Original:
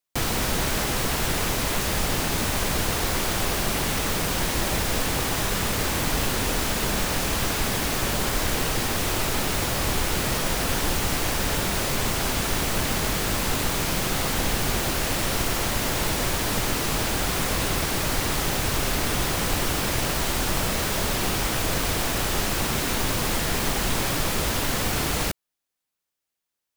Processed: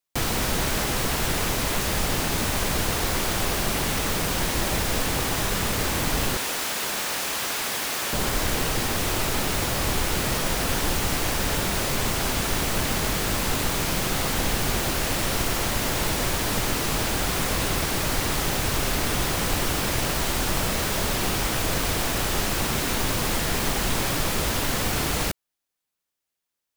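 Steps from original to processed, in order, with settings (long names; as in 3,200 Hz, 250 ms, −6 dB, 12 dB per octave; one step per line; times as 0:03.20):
0:06.37–0:08.13: high-pass filter 760 Hz 6 dB per octave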